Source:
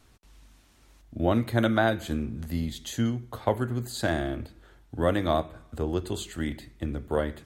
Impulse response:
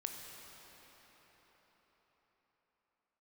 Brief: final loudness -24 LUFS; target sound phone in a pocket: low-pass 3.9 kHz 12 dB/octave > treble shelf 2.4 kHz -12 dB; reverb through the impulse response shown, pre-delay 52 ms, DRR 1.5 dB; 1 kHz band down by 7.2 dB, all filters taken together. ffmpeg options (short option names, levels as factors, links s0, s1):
-filter_complex "[0:a]equalizer=f=1000:t=o:g=-9,asplit=2[s0][s1];[1:a]atrim=start_sample=2205,adelay=52[s2];[s1][s2]afir=irnorm=-1:irlink=0,volume=0.891[s3];[s0][s3]amix=inputs=2:normalize=0,lowpass=3900,highshelf=f=2400:g=-12,volume=1.68"